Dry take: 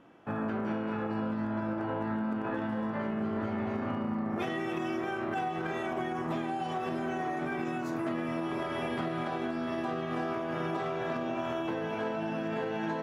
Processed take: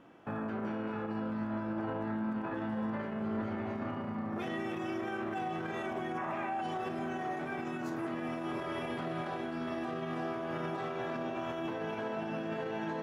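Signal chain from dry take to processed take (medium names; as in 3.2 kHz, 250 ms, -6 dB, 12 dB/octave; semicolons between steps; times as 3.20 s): time-frequency box 6.18–6.61 s, 530–2900 Hz +12 dB; peak limiter -29 dBFS, peak gain reduction 14 dB; on a send: echo that smears into a reverb 576 ms, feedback 73%, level -14 dB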